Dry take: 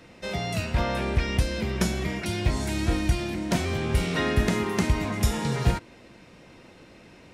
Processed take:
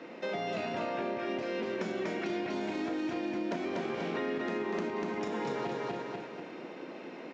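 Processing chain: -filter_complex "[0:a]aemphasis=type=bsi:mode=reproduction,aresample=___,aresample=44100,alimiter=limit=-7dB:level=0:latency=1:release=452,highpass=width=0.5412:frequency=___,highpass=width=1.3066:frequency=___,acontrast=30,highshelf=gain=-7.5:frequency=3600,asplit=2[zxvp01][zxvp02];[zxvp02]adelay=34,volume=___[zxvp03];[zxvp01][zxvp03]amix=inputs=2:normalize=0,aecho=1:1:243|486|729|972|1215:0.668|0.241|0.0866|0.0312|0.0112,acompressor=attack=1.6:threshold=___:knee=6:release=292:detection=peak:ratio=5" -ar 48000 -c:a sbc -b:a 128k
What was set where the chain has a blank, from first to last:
16000, 280, 280, -12.5dB, -30dB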